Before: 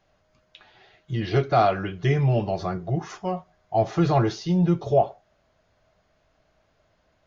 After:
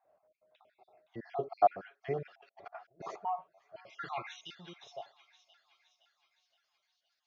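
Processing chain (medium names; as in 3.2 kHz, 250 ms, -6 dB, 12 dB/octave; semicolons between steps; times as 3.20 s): random holes in the spectrogram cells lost 45%; band-pass sweep 650 Hz -> 4.7 kHz, 3.05–4.97 s; on a send: feedback echo behind a high-pass 517 ms, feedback 52%, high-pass 2 kHz, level -12 dB; 2.25–3.16 s: on the sum: compressor with a negative ratio -52 dBFS, ratio -0.5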